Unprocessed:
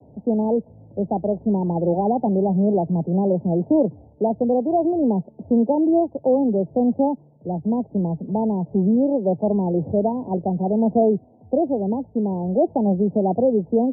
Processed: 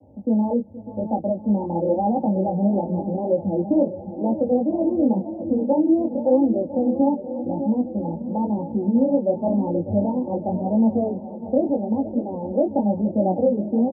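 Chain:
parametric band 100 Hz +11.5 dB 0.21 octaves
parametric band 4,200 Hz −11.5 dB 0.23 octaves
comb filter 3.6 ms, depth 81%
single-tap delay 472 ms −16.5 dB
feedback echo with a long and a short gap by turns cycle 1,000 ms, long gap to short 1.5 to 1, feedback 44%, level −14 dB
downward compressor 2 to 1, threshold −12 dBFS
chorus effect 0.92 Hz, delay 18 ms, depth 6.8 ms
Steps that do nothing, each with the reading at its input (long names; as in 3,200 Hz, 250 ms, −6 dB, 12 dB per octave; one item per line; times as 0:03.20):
parametric band 4,200 Hz: nothing at its input above 960 Hz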